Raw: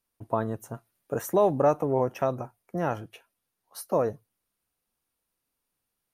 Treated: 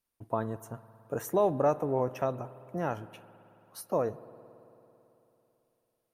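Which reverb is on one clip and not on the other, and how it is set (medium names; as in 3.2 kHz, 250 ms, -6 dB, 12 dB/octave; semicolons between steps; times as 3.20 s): spring tank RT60 3.3 s, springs 55 ms, chirp 65 ms, DRR 16 dB; trim -4 dB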